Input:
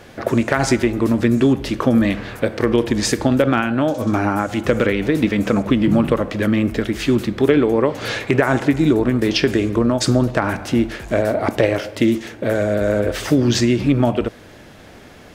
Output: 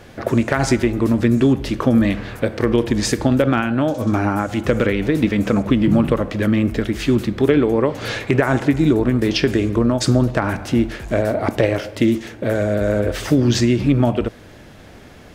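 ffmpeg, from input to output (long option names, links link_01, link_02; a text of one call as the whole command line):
ffmpeg -i in.wav -af "lowshelf=frequency=160:gain=5.5,volume=-1.5dB" out.wav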